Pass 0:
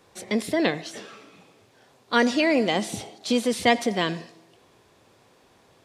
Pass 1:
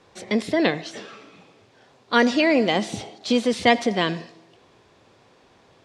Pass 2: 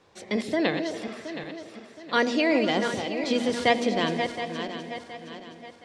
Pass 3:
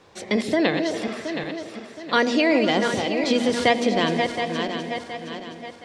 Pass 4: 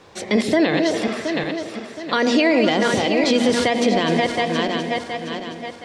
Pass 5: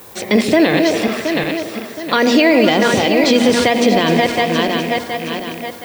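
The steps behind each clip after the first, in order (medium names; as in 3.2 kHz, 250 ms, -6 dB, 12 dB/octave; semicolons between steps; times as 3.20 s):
low-pass 6.1 kHz 12 dB/octave; trim +2.5 dB
backward echo that repeats 360 ms, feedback 62%, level -7.5 dB; hum notches 60/120/180/240 Hz; repeats whose band climbs or falls 127 ms, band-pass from 330 Hz, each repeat 0.7 oct, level -8 dB; trim -4.5 dB
compression 1.5:1, threshold -28 dBFS, peak gain reduction 5 dB; trim +7 dB
peak limiter -13 dBFS, peak gain reduction 9 dB; trim +5.5 dB
rattle on loud lows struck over -34 dBFS, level -23 dBFS; added noise violet -46 dBFS; trim +5 dB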